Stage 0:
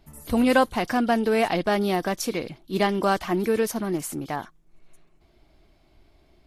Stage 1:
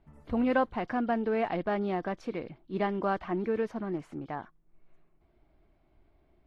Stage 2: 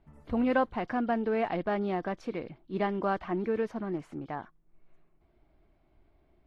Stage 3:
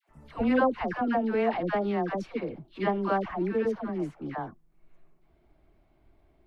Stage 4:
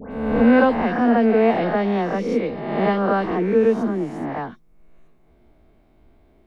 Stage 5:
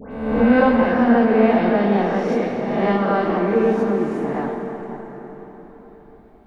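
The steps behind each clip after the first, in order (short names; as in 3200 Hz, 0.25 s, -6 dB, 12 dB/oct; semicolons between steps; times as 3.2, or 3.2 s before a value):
LPF 2000 Hz 12 dB/oct; gain -7 dB
nothing audible
dispersion lows, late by 92 ms, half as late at 770 Hz; gain +2.5 dB
spectral swells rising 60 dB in 1.14 s; small resonant body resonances 230/460/3700 Hz, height 7 dB; dispersion highs, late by 0.127 s, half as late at 2100 Hz; gain +4 dB
plate-style reverb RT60 4.6 s, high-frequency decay 0.65×, DRR 1 dB; gain -1 dB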